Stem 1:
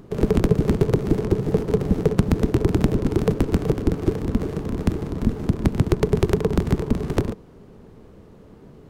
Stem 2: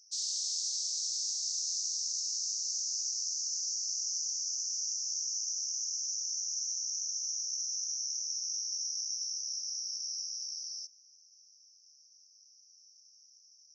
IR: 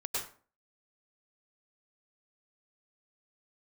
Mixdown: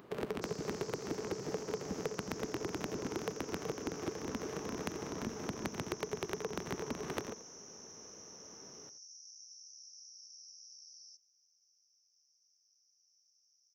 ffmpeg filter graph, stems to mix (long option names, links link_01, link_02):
-filter_complex "[0:a]highpass=frequency=1200:poles=1,equalizer=frequency=9000:width_type=o:width=2:gain=-9.5,acompressor=threshold=-37dB:ratio=4,volume=1dB,asplit=2[link_01][link_02];[link_02]volume=-14.5dB[link_03];[1:a]acompressor=threshold=-39dB:ratio=4,adelay=300,volume=-12.5dB[link_04];[link_03]aecho=0:1:86:1[link_05];[link_01][link_04][link_05]amix=inputs=3:normalize=0"